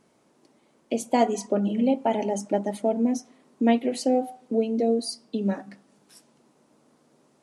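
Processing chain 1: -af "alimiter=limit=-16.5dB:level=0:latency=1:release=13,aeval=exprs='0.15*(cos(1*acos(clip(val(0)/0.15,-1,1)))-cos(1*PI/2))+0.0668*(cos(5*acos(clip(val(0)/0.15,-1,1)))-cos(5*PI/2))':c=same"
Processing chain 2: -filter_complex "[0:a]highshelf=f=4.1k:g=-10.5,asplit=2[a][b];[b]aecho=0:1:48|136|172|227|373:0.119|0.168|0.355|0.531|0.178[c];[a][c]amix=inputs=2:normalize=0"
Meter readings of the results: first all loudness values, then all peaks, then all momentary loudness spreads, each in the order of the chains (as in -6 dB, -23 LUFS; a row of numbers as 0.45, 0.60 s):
-23.5, -24.5 LUFS; -13.5, -8.5 dBFS; 7, 7 LU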